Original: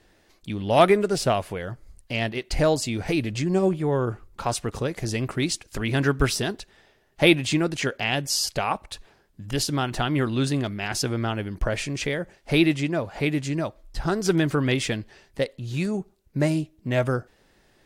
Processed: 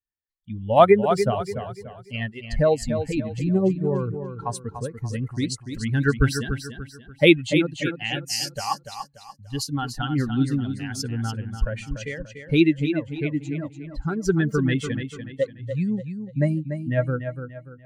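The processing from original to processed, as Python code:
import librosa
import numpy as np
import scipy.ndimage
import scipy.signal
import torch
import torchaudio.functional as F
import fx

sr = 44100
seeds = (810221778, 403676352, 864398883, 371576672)

y = fx.bin_expand(x, sr, power=2.0)
y = fx.high_shelf(y, sr, hz=3600.0, db=-7.0)
y = fx.echo_feedback(y, sr, ms=291, feedback_pct=36, wet_db=-8.5)
y = y * 10.0 ** (5.5 / 20.0)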